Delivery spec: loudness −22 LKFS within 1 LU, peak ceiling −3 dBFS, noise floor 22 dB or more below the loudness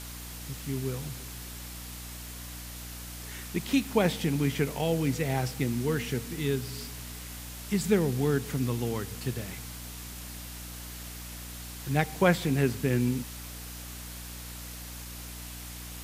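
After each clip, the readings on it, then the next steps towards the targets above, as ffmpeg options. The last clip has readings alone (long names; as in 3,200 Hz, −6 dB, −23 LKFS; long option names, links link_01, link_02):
mains hum 60 Hz; hum harmonics up to 300 Hz; level of the hum −42 dBFS; background noise floor −42 dBFS; target noise floor −54 dBFS; integrated loudness −32.0 LKFS; sample peak −8.5 dBFS; target loudness −22.0 LKFS
→ -af "bandreject=frequency=60:width_type=h:width=4,bandreject=frequency=120:width_type=h:width=4,bandreject=frequency=180:width_type=h:width=4,bandreject=frequency=240:width_type=h:width=4,bandreject=frequency=300:width_type=h:width=4"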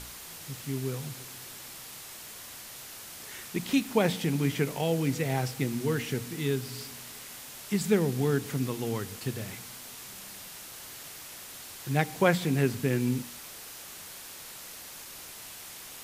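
mains hum none found; background noise floor −45 dBFS; target noise floor −54 dBFS
→ -af "afftdn=noise_reduction=9:noise_floor=-45"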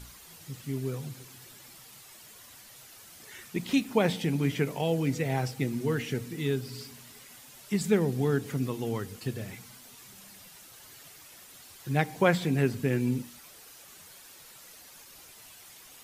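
background noise floor −52 dBFS; integrated loudness −30.0 LKFS; sample peak −8.5 dBFS; target loudness −22.0 LKFS
→ -af "volume=8dB,alimiter=limit=-3dB:level=0:latency=1"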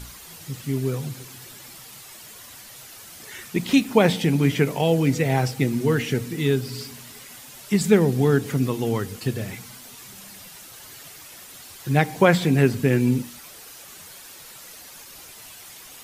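integrated loudness −22.0 LKFS; sample peak −3.0 dBFS; background noise floor −44 dBFS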